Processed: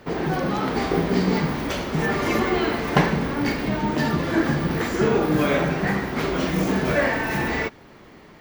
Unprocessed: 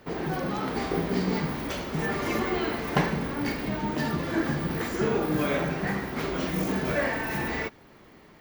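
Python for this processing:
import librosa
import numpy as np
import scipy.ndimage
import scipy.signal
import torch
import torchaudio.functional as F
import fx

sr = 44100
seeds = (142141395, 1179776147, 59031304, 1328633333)

y = fx.high_shelf(x, sr, hz=12000.0, db=-6.5)
y = F.gain(torch.from_numpy(y), 6.0).numpy()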